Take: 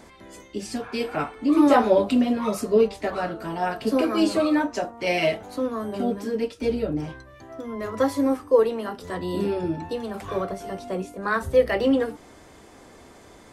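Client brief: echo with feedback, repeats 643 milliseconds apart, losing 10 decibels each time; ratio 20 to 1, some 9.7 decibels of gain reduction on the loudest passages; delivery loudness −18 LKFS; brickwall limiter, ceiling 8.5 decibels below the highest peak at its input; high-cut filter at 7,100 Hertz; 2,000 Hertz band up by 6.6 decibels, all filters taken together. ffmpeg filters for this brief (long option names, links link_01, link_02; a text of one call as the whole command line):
ffmpeg -i in.wav -af "lowpass=7100,equalizer=frequency=2000:width_type=o:gain=8.5,acompressor=threshold=-21dB:ratio=20,alimiter=limit=-20.5dB:level=0:latency=1,aecho=1:1:643|1286|1929|2572:0.316|0.101|0.0324|0.0104,volume=12dB" out.wav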